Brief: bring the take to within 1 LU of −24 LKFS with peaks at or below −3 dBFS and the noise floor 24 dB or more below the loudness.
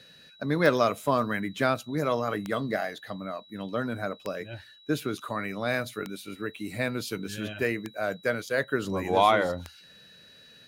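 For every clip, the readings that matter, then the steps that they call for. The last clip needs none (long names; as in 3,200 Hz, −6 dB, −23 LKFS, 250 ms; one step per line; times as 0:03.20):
number of clicks 6; interfering tone 3,900 Hz; level of the tone −53 dBFS; integrated loudness −29.0 LKFS; sample peak −8.0 dBFS; target loudness −24.0 LKFS
→ click removal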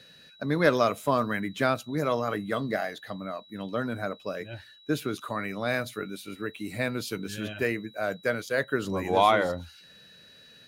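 number of clicks 0; interfering tone 3,900 Hz; level of the tone −53 dBFS
→ notch filter 3,900 Hz, Q 30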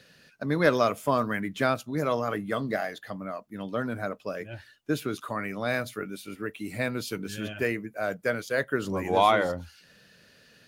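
interfering tone none found; integrated loudness −29.0 LKFS; sample peak −8.5 dBFS; target loudness −24.0 LKFS
→ level +5 dB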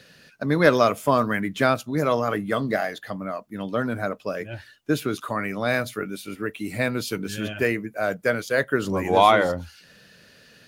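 integrated loudness −24.0 LKFS; sample peak −3.5 dBFS; background noise floor −54 dBFS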